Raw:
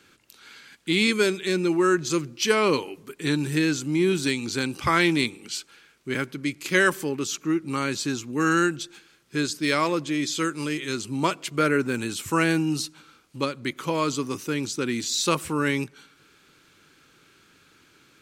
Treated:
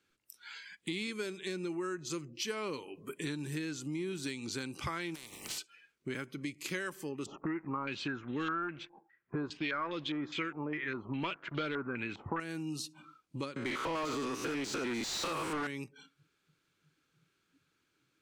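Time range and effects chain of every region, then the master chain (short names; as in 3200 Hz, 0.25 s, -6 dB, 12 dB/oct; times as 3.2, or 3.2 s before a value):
5.14–5.57 spectral contrast lowered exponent 0.35 + compressor 8:1, threshold -32 dBFS
7.26–12.4 sample leveller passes 2 + stepped low-pass 4.9 Hz 820–3500 Hz
13.56–15.67 stepped spectrum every 0.1 s + overdrive pedal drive 31 dB, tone 2100 Hz, clips at -9 dBFS
whole clip: spectral noise reduction 20 dB; compressor 5:1, threshold -37 dBFS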